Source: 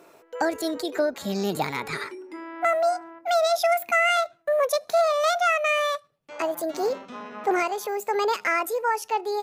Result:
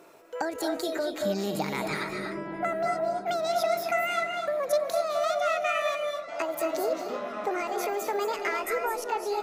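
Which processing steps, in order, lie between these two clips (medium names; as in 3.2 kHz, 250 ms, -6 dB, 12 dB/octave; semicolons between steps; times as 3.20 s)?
compression, threshold -26 dBFS, peak gain reduction 9 dB; 8.33–8.81 s: added noise brown -64 dBFS; delay with an opening low-pass 462 ms, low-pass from 200 Hz, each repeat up 1 oct, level -6 dB; on a send at -3.5 dB: reverberation RT60 0.35 s, pre-delay 186 ms; on the sum: trim -1 dB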